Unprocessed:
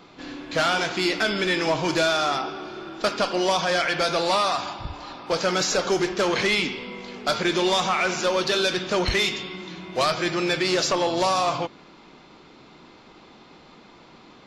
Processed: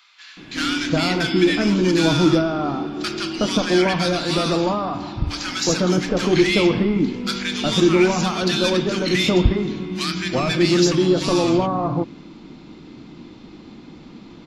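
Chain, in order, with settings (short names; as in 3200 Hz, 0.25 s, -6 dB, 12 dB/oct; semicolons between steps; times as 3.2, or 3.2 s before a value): resonant low shelf 410 Hz +9 dB, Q 1.5; notch 390 Hz, Q 12; bands offset in time highs, lows 0.37 s, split 1300 Hz; gain +2 dB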